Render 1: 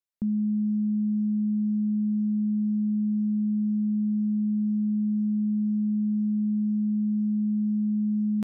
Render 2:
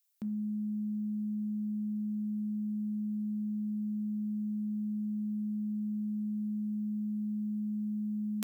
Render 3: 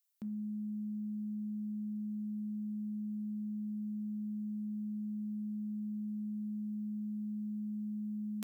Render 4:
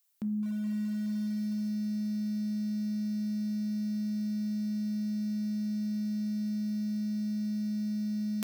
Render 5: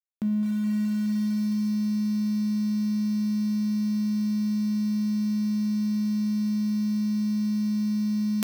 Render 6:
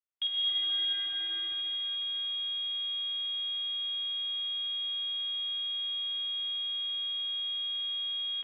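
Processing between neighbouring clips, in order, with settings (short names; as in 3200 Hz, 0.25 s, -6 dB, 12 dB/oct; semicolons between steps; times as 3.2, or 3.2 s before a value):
tilt +4.5 dB/oct; de-hum 65.2 Hz, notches 34; gain +1 dB
soft clip -10 dBFS, distortion -40 dB; gain -4.5 dB
lo-fi delay 0.211 s, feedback 80%, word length 8-bit, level -13 dB; gain +7.5 dB
crossover distortion -53.5 dBFS; gain +7.5 dB
tapped delay 50/124/136/691/708 ms -5/-9/-14/-18/-9.5 dB; digital reverb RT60 0.76 s, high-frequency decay 0.4×, pre-delay 0.105 s, DRR 0 dB; inverted band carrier 3500 Hz; gain -4.5 dB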